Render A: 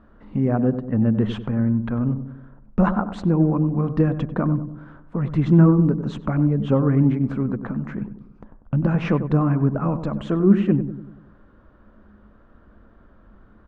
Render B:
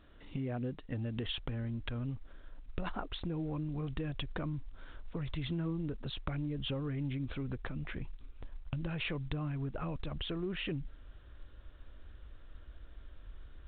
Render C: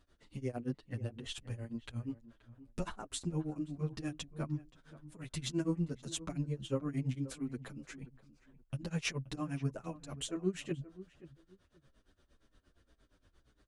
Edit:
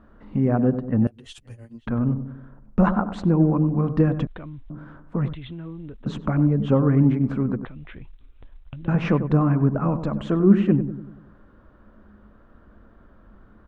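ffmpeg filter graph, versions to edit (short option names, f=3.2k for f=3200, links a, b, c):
-filter_complex "[1:a]asplit=3[a][b][c];[0:a]asplit=5[d][e][f][g][h];[d]atrim=end=1.072[i];[2:a]atrim=start=1.068:end=1.872[j];[e]atrim=start=1.868:end=4.272[k];[a]atrim=start=4.268:end=4.702[l];[f]atrim=start=4.698:end=5.332[m];[b]atrim=start=5.328:end=6.062[n];[g]atrim=start=6.058:end=7.652[o];[c]atrim=start=7.648:end=8.882[p];[h]atrim=start=8.878[q];[i][j]acrossfade=d=0.004:c1=hsin:c2=hsin[r];[r][k]acrossfade=d=0.004:c1=hsin:c2=hsin[s];[s][l]acrossfade=d=0.004:c1=hsin:c2=hsin[t];[t][m]acrossfade=d=0.004:c1=hsin:c2=hsin[u];[u][n]acrossfade=d=0.004:c1=hsin:c2=hsin[v];[v][o]acrossfade=d=0.004:c1=hsin:c2=hsin[w];[w][p]acrossfade=d=0.004:c1=hsin:c2=hsin[x];[x][q]acrossfade=d=0.004:c1=hsin:c2=hsin"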